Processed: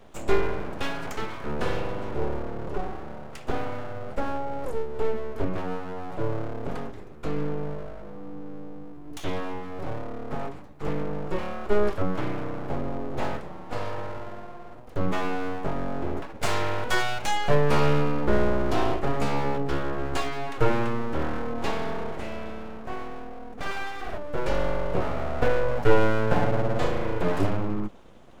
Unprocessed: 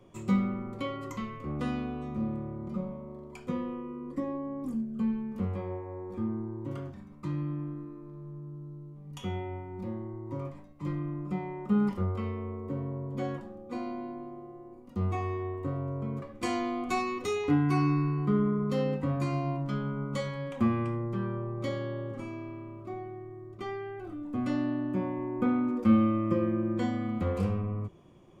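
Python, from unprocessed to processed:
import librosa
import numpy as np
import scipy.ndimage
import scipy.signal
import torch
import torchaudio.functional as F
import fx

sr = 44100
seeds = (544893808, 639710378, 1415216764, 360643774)

y = fx.room_flutter(x, sr, wall_m=9.0, rt60_s=1.2, at=(23.52, 24.18))
y = np.abs(y)
y = y * librosa.db_to_amplitude(8.0)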